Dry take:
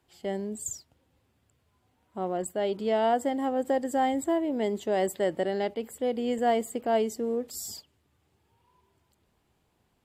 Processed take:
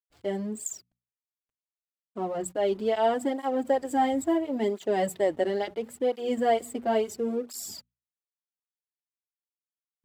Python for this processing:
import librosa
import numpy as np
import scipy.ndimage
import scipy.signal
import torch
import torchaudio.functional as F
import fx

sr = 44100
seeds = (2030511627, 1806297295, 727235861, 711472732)

y = fx.backlash(x, sr, play_db=-46.5)
y = fx.hum_notches(y, sr, base_hz=60, count=4)
y = fx.flanger_cancel(y, sr, hz=0.73, depth_ms=6.8)
y = F.gain(torch.from_numpy(y), 3.5).numpy()